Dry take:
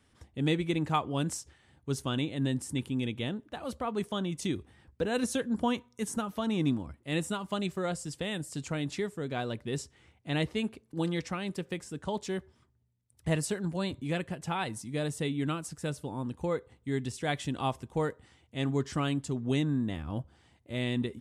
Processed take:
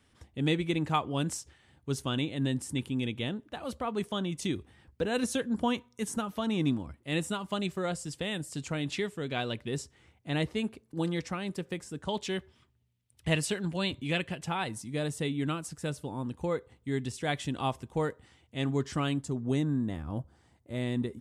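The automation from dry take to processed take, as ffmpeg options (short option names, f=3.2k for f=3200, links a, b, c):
-af "asetnsamples=n=441:p=0,asendcmd='8.84 equalizer g 8;9.68 equalizer g -1;12.09 equalizer g 9.5;14.45 equalizer g 1;19.21 equalizer g -7.5',equalizer=f=2.9k:t=o:w=1.1:g=2"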